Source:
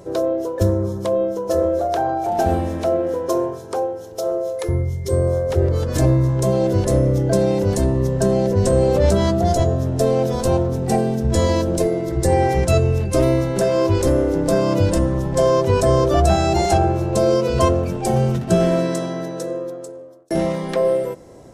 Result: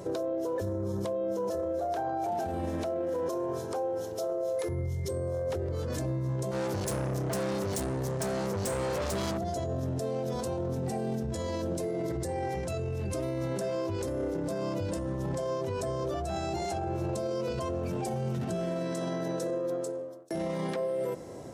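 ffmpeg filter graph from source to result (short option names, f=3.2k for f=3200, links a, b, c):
-filter_complex "[0:a]asettb=1/sr,asplit=3[a][b][c];[a]atrim=end=6.514[d];[b]atrim=start=6.51:end=9.38,asetpts=PTS-STARTPTS,afade=t=in:d=0.004:c=qsin,afade=t=out:st=2.866:d=0.004:c=qsin,highshelf=f=3.7k:g=10,aeval=exprs='(tanh(14.1*val(0)+0.6)-tanh(0.6))/14.1':c=same[e];[c]atrim=start=9.376[f];[d][e]acrossfade=d=0.004:c1=hsin:c2=qsin[g];[g][f]acrossfade=d=0.004:c1=qsin:c2=hsin,acompressor=threshold=-22dB:ratio=6,alimiter=level_in=1dB:limit=-24dB:level=0:latency=1:release=24,volume=-1dB,highpass=81"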